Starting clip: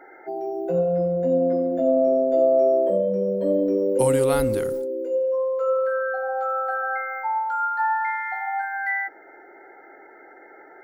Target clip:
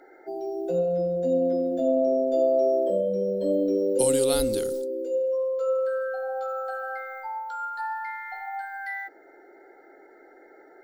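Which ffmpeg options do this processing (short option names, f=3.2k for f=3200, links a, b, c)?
-af "equalizer=f=125:t=o:w=1:g=-11,equalizer=f=1k:t=o:w=1:g=-9,equalizer=f=2k:t=o:w=1:g=-9,equalizer=f=4k:t=o:w=1:g=10,equalizer=f=8k:t=o:w=1:g=5"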